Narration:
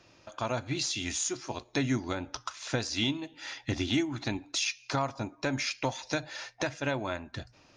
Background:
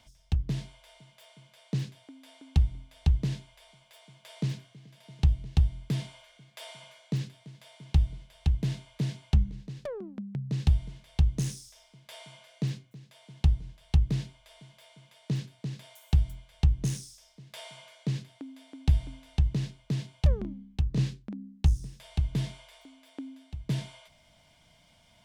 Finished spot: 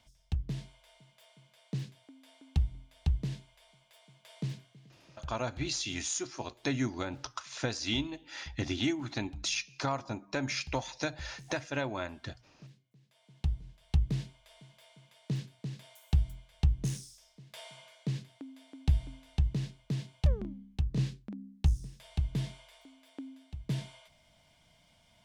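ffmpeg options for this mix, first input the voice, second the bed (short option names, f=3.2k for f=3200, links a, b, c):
-filter_complex "[0:a]adelay=4900,volume=-2.5dB[a];[1:a]volume=13.5dB,afade=t=out:st=4.87:d=0.4:silence=0.141254,afade=t=in:st=12.76:d=1.36:silence=0.112202[b];[a][b]amix=inputs=2:normalize=0"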